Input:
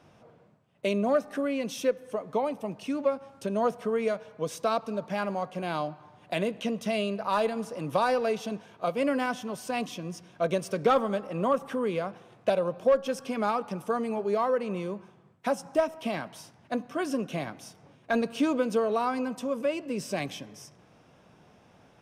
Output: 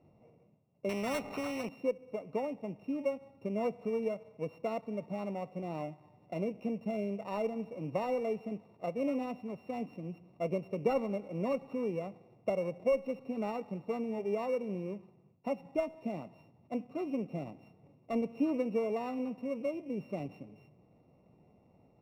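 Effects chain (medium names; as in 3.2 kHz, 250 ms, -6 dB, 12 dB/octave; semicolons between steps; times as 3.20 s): sorted samples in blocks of 16 samples; boxcar filter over 27 samples; 0.89–1.69 s: spectrum-flattening compressor 2:1; trim -4 dB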